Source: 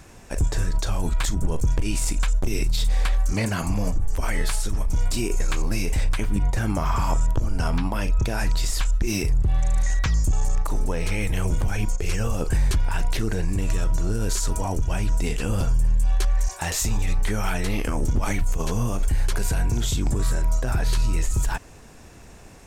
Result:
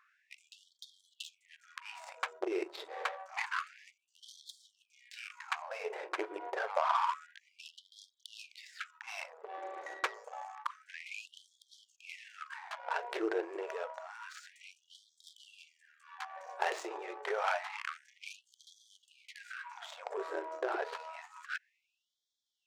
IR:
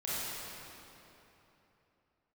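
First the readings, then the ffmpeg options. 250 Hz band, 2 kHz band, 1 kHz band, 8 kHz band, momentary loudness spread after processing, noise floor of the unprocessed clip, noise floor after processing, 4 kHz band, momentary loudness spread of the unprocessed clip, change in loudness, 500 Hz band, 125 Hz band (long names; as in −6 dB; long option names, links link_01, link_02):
−19.5 dB, −7.5 dB, −4.5 dB, −25.0 dB, 20 LU, −45 dBFS, −81 dBFS, −13.5 dB, 3 LU, −14.0 dB, −7.5 dB, below −40 dB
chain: -af "adynamicsmooth=sensitivity=1.5:basefreq=840,afftfilt=real='re*gte(b*sr/1024,310*pow(3200/310,0.5+0.5*sin(2*PI*0.28*pts/sr)))':imag='im*gte(b*sr/1024,310*pow(3200/310,0.5+0.5*sin(2*PI*0.28*pts/sr)))':win_size=1024:overlap=0.75"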